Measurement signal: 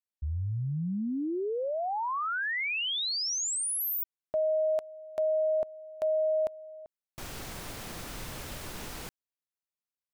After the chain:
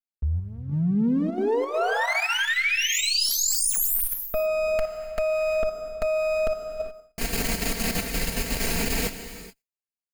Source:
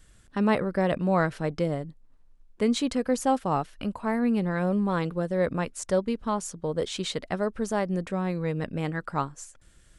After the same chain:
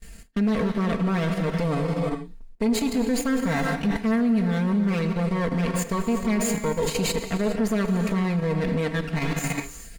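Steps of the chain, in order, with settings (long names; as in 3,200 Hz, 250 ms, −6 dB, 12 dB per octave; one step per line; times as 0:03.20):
lower of the sound and its delayed copy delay 0.42 ms
reverb whose tail is shaped and stops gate 450 ms flat, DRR 6.5 dB
reversed playback
downward compressor 6 to 1, threshold −34 dBFS
reversed playback
brickwall limiter −31.5 dBFS
noise gate with hold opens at −48 dBFS, closes at −51 dBFS, hold 114 ms, range −21 dB
comb filter 4.4 ms, depth 79%
in parallel at +2 dB: output level in coarse steps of 20 dB
on the sum: level +8 dB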